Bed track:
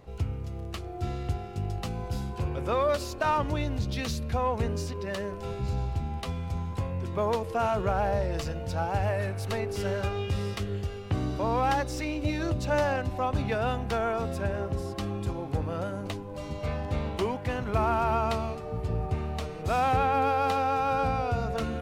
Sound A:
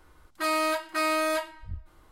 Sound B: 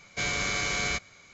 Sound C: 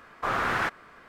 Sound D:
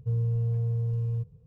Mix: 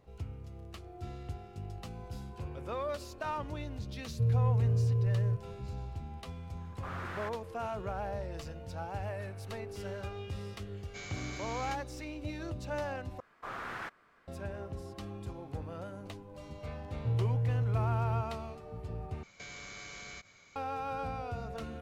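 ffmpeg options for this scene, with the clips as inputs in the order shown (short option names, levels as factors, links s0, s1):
-filter_complex "[4:a]asplit=2[s0][s1];[3:a]asplit=2[s2][s3];[2:a]asplit=2[s4][s5];[0:a]volume=0.299[s6];[s5]acompressor=threshold=0.0126:ratio=6:attack=3.2:release=140:knee=1:detection=peak[s7];[s6]asplit=3[s8][s9][s10];[s8]atrim=end=13.204[s11];[s3]atrim=end=1.08,asetpts=PTS-STARTPTS,volume=0.2[s12];[s9]atrim=start=14.276:end=19.234[s13];[s7]atrim=end=1.33,asetpts=PTS-STARTPTS,volume=0.501[s14];[s10]atrim=start=20.556[s15];[s0]atrim=end=1.46,asetpts=PTS-STARTPTS,volume=0.944,afade=t=in:d=0.004:c=hsin,afade=t=out:st=1.456:d=0.004:c=hsin,adelay=182133S[s16];[s2]atrim=end=1.08,asetpts=PTS-STARTPTS,volume=0.168,afade=t=in:d=0.004:c=hsin,afade=t=out:st=1.076:d=0.004:c=hsin,adelay=6600[s17];[s4]atrim=end=1.33,asetpts=PTS-STARTPTS,volume=0.158,afade=t=in:d=0.004:c=hsin,afade=t=out:st=1.326:d=0.004:c=hsin,adelay=10770[s18];[s1]atrim=end=1.46,asetpts=PTS-STARTPTS,volume=0.668,afade=t=in:d=0.004:c=hsin,afade=t=out:st=1.456:d=0.004:c=hsin,adelay=16990[s19];[s11][s12]acrossfade=d=0.004:c1=hsin:c2=hsin[s20];[s20][s13]acrossfade=d=0.004:c1=hsin:c2=hsin[s21];[s21][s14]acrossfade=d=0.004:c1=hsin:c2=hsin[s22];[s22][s15]acrossfade=d=0.004:c1=hsin:c2=hsin[s23];[s23][s16][s17][s18][s19]amix=inputs=5:normalize=0"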